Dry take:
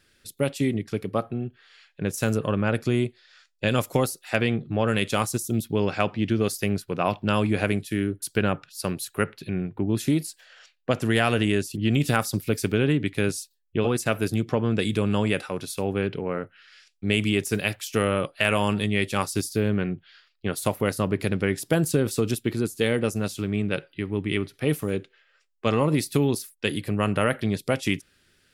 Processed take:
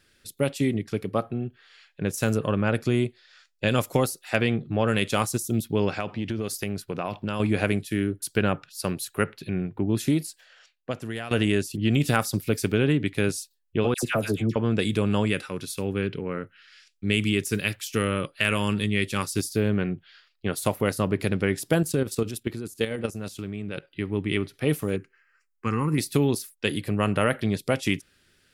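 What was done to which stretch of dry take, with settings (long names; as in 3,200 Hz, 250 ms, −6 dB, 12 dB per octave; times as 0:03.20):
0:05.96–0:07.40: downward compressor, threshold −24 dBFS
0:10.06–0:11.31: fade out, to −15.5 dB
0:13.94–0:14.56: all-pass dispersion lows, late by 89 ms, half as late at 1,300 Hz
0:15.25–0:19.38: parametric band 720 Hz −9.5 dB 0.85 octaves
0:21.82–0:23.93: output level in coarse steps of 11 dB
0:24.96–0:25.98: phaser with its sweep stopped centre 1,500 Hz, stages 4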